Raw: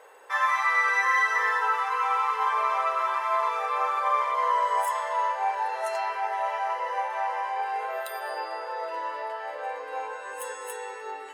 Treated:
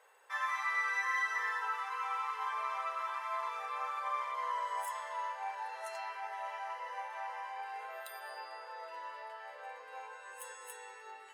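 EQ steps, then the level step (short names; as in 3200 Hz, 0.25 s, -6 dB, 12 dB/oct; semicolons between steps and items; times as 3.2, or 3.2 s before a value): HPF 1200 Hz 6 dB/oct; -8.5 dB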